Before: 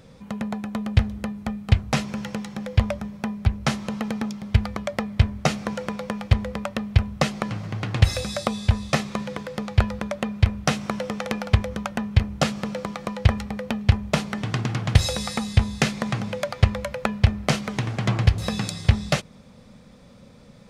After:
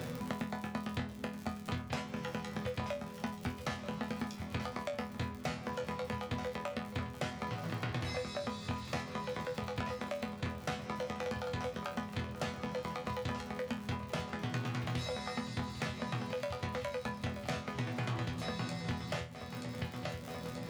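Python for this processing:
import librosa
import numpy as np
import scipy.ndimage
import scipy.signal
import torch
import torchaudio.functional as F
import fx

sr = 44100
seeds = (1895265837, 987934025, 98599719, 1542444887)

y = fx.low_shelf(x, sr, hz=150.0, db=-5.0)
y = fx.echo_feedback(y, sr, ms=931, feedback_pct=48, wet_db=-16.5)
y = np.clip(10.0 ** (21.5 / 20.0) * y, -1.0, 1.0) / 10.0 ** (21.5 / 20.0)
y = scipy.signal.sosfilt(scipy.signal.butter(2, 80.0, 'highpass', fs=sr, output='sos'), y)
y = fx.high_shelf(y, sr, hz=6900.0, db=-9.5)
y = fx.dmg_crackle(y, sr, seeds[0], per_s=66.0, level_db=-35.0)
y = fx.resonator_bank(y, sr, root=40, chord='fifth', decay_s=0.28)
y = fx.band_squash(y, sr, depth_pct=100)
y = y * 10.0 ** (2.5 / 20.0)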